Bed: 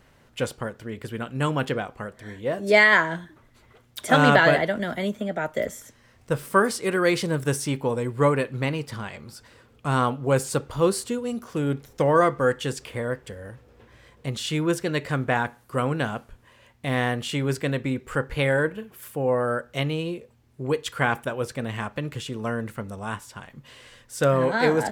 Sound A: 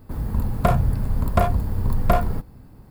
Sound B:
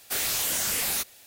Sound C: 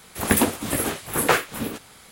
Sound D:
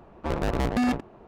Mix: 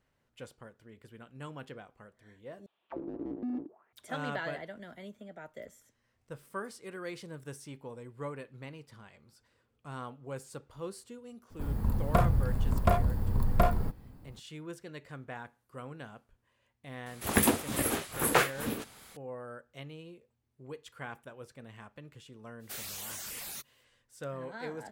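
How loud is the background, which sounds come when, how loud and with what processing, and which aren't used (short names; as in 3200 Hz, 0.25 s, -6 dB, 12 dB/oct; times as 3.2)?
bed -19.5 dB
2.66 replace with D -1 dB + auto-wah 310–4000 Hz, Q 6.5, down, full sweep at -25 dBFS
11.5 add A -6.5 dB
17.06 add C -6 dB
22.59 add B -13 dB, fades 0.05 s + reverb removal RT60 0.53 s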